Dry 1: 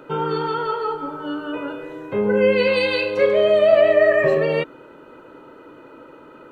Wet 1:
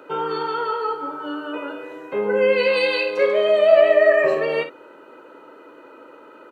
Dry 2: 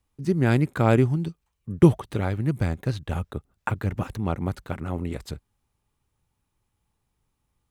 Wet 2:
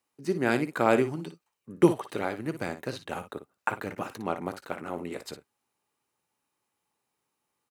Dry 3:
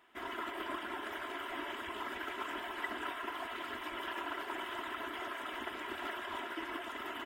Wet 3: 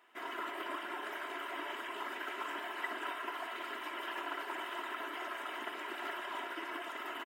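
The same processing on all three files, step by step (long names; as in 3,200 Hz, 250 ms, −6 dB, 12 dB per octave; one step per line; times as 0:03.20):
high-pass filter 330 Hz 12 dB per octave
notch filter 3,400 Hz, Q 14
on a send: ambience of single reflections 17 ms −17.5 dB, 57 ms −11 dB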